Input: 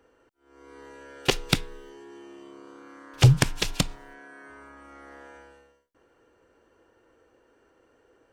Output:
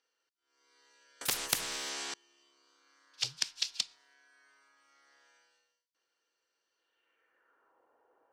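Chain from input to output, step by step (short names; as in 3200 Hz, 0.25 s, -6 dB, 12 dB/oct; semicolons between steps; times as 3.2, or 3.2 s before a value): band-pass sweep 4800 Hz -> 870 Hz, 6.73–7.8; 1.21–2.14 spectral compressor 10:1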